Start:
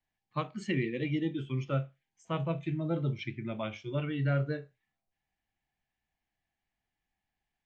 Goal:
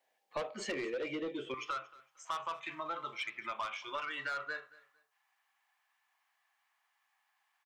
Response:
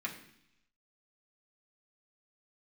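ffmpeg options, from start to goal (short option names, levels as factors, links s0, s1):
-af "asetnsamples=n=441:p=0,asendcmd='1.54 highpass f 1100',highpass=f=530:t=q:w=4.3,asoftclip=type=tanh:threshold=0.0266,acompressor=threshold=0.00562:ratio=4,aecho=1:1:229|458:0.0891|0.0232,volume=2.51"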